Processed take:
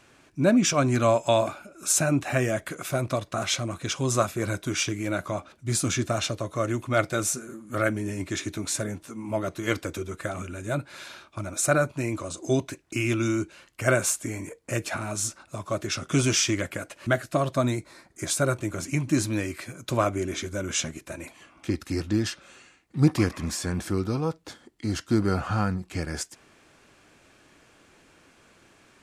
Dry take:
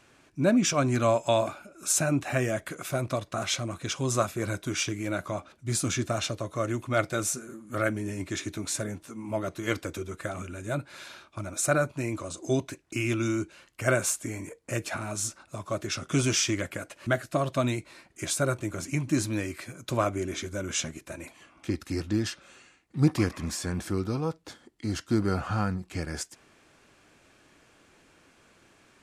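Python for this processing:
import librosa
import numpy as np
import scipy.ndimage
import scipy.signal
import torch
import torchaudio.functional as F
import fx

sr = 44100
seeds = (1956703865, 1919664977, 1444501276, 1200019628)

y = fx.peak_eq(x, sr, hz=2800.0, db=-11.0, octaves=0.46, at=(17.54, 18.3))
y = F.gain(torch.from_numpy(y), 2.5).numpy()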